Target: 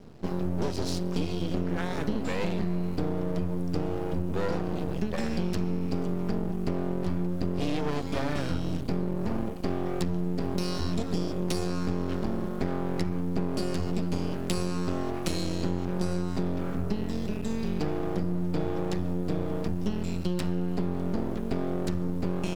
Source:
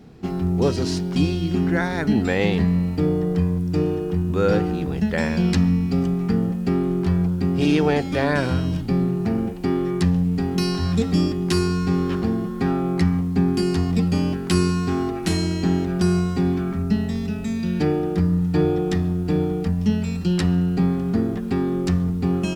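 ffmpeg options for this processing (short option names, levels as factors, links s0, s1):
-af "equalizer=f=1900:t=o:w=0.69:g=-4.5,aeval=exprs='max(val(0),0)':c=same,acompressor=threshold=0.0708:ratio=6"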